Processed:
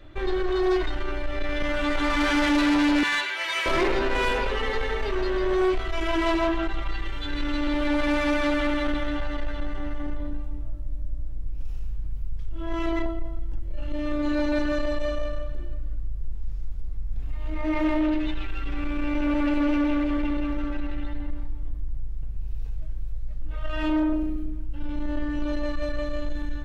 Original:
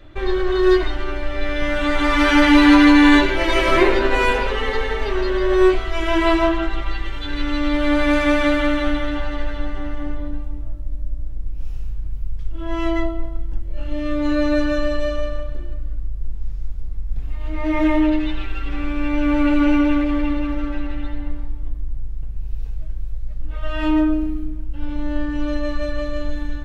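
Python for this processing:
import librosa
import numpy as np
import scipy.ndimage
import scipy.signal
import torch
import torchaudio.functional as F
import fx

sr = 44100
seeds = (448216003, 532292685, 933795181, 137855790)

y = fx.highpass(x, sr, hz=1300.0, slope=12, at=(3.03, 3.66))
y = 10.0 ** (-15.5 / 20.0) * np.tanh(y / 10.0 ** (-15.5 / 20.0))
y = y * librosa.db_to_amplitude(-3.0)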